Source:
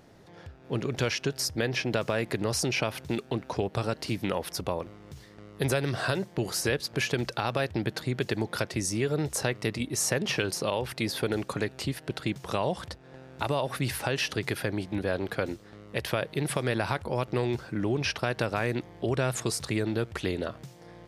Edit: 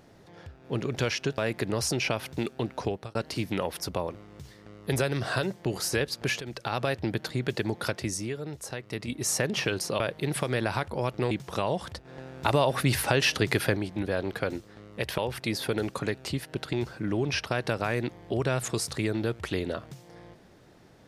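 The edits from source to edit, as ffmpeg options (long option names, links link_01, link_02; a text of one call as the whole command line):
ffmpeg -i in.wav -filter_complex "[0:a]asplit=12[link_01][link_02][link_03][link_04][link_05][link_06][link_07][link_08][link_09][link_10][link_11][link_12];[link_01]atrim=end=1.382[link_13];[link_02]atrim=start=2.098:end=3.87,asetpts=PTS-STARTPTS,afade=type=out:start_time=1.482:duration=0.29[link_14];[link_03]atrim=start=3.87:end=7.13,asetpts=PTS-STARTPTS,afade=type=in:duration=0.004:curve=hsin,afade=type=out:start_time=3.256:duration=0.004:curve=hsin:silence=0.223872[link_15];[link_04]atrim=start=7.13:end=9.12,asetpts=PTS-STARTPTS,afade=type=in:duration=0.36:silence=0.223872,afade=type=out:start_time=1.58:duration=0.41:silence=0.375837[link_16];[link_05]atrim=start=9.12:end=9.55,asetpts=PTS-STARTPTS,volume=-8.5dB[link_17];[link_06]atrim=start=9.55:end=10.722,asetpts=PTS-STARTPTS,afade=type=in:duration=0.41:silence=0.375837[link_18];[link_07]atrim=start=16.138:end=17.452[link_19];[link_08]atrim=start=12.268:end=13.012[link_20];[link_09]atrim=start=13.008:end=14.732,asetpts=PTS-STARTPTS,volume=5dB[link_21];[link_10]atrim=start=14.728:end=16.142[link_22];[link_11]atrim=start=10.718:end=12.272[link_23];[link_12]atrim=start=17.448[link_24];[link_14][link_15][link_16][link_17][link_18]concat=n=5:v=0:a=1[link_25];[link_13][link_25]acrossfade=duration=0.004:curve1=hsin:curve2=hsin[link_26];[link_26][link_19]acrossfade=duration=0.004:curve1=hsin:curve2=hsin[link_27];[link_27][link_20]acrossfade=duration=0.004:curve1=hsin:curve2=hsin[link_28];[link_28][link_21]acrossfade=duration=0.004:curve1=hsin:curve2=hsin[link_29];[link_29][link_22]acrossfade=duration=0.004:curve1=hsin:curve2=hsin[link_30];[link_30][link_23]acrossfade=duration=0.004:curve1=hsin:curve2=hsin[link_31];[link_31][link_24]acrossfade=duration=0.004:curve1=hsin:curve2=hsin" out.wav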